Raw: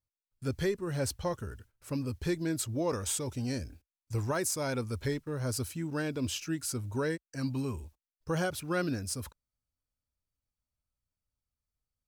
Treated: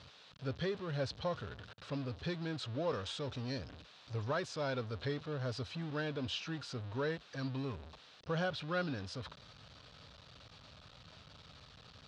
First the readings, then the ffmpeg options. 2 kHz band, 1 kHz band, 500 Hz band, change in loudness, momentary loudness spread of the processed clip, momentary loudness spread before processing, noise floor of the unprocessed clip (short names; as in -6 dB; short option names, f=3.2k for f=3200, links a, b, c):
-3.0 dB, -3.0 dB, -4.0 dB, -5.5 dB, 19 LU, 7 LU, under -85 dBFS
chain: -af "aeval=exprs='val(0)+0.5*0.0141*sgn(val(0))':c=same,highpass=130,equalizer=f=230:t=q:w=4:g=-7,equalizer=f=340:t=q:w=4:g=-9,equalizer=f=870:t=q:w=4:g=-3,equalizer=f=2.1k:t=q:w=4:g=-6,equalizer=f=3.8k:t=q:w=4:g=5,lowpass=f=4.3k:w=0.5412,lowpass=f=4.3k:w=1.3066,volume=-3.5dB"